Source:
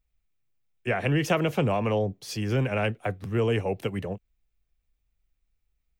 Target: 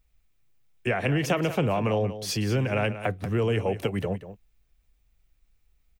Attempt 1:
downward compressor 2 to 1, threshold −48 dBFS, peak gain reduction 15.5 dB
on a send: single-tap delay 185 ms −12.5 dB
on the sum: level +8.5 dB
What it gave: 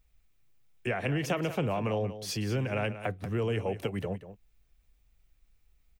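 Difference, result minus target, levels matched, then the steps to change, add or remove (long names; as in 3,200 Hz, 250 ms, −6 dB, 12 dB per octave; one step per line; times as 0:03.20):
downward compressor: peak gain reduction +5 dB
change: downward compressor 2 to 1, threshold −37.5 dBFS, peak gain reduction 10.5 dB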